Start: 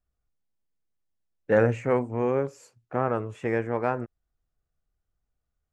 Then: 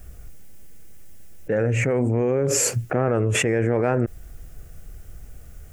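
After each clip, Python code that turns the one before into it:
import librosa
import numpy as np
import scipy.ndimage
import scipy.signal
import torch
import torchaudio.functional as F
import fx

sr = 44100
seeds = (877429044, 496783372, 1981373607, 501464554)

y = fx.graphic_eq_10(x, sr, hz=(250, 1000, 4000), db=(-3, -12, -10))
y = fx.env_flatten(y, sr, amount_pct=100)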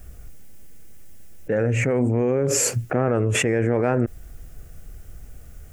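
y = fx.peak_eq(x, sr, hz=250.0, db=2.5, octaves=0.26)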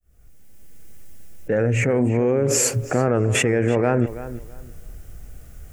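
y = fx.fade_in_head(x, sr, length_s=0.89)
y = fx.echo_filtered(y, sr, ms=330, feedback_pct=22, hz=3800.0, wet_db=-14.0)
y = y * 10.0 ** (1.5 / 20.0)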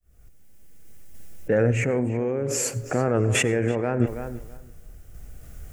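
y = fx.tremolo_random(x, sr, seeds[0], hz=3.5, depth_pct=55)
y = fx.rev_plate(y, sr, seeds[1], rt60_s=0.61, hf_ratio=0.45, predelay_ms=80, drr_db=19.0)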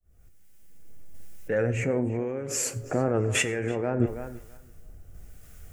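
y = fx.harmonic_tremolo(x, sr, hz=1.0, depth_pct=50, crossover_hz=1100.0)
y = fx.comb_fb(y, sr, f0_hz=89.0, decay_s=0.18, harmonics='all', damping=0.0, mix_pct=60)
y = y * 10.0 ** (2.5 / 20.0)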